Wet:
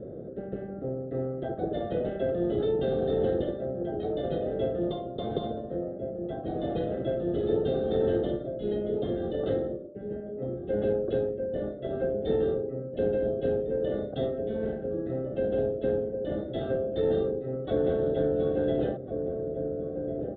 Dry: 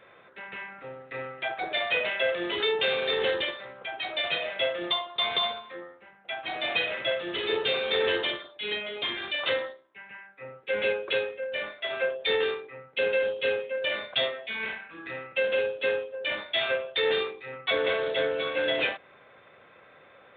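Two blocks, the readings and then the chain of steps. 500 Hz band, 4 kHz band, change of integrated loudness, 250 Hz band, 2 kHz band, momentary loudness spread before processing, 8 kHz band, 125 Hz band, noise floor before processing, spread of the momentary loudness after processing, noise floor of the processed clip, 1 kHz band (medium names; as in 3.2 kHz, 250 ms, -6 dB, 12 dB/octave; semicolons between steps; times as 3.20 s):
+2.0 dB, -20.5 dB, -2.0 dB, +12.0 dB, -20.5 dB, 13 LU, no reading, +17.0 dB, -56 dBFS, 8 LU, -39 dBFS, -5.0 dB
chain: inverse Chebyshev low-pass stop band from 910 Hz, stop band 40 dB; echo from a far wall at 240 m, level -11 dB; spectrum-flattening compressor 2:1; trim +6 dB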